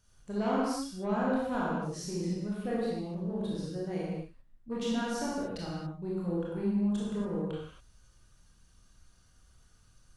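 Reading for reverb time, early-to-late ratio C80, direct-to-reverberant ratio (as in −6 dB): non-exponential decay, 0.5 dB, −6.5 dB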